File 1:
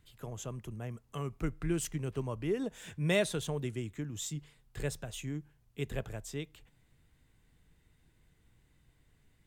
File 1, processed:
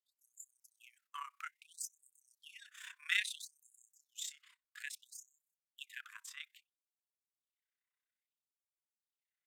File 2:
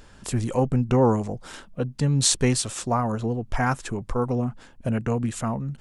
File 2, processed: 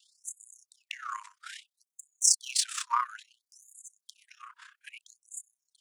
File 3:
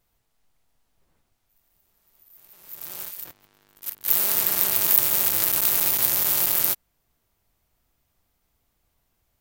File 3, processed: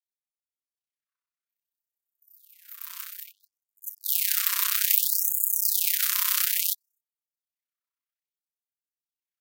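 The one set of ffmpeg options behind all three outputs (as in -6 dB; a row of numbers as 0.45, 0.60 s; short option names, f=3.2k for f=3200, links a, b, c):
-filter_complex "[0:a]agate=range=-19dB:threshold=-55dB:ratio=16:detection=peak,adynamicequalizer=threshold=0.00794:dfrequency=530:dqfactor=7.1:tfrequency=530:tqfactor=7.1:attack=5:release=100:ratio=0.375:range=1.5:mode=cutabove:tftype=bell,asplit=2[a][b];[b]adynamicsmooth=sensitivity=6:basefreq=3.3k,volume=-1dB[c];[a][c]amix=inputs=2:normalize=0,tremolo=f=32:d=0.71,afftfilt=real='re*gte(b*sr/1024,930*pow(6700/930,0.5+0.5*sin(2*PI*0.6*pts/sr)))':imag='im*gte(b*sr/1024,930*pow(6700/930,0.5+0.5*sin(2*PI*0.6*pts/sr)))':win_size=1024:overlap=0.75"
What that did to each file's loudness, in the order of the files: -6.0, -4.0, -3.5 LU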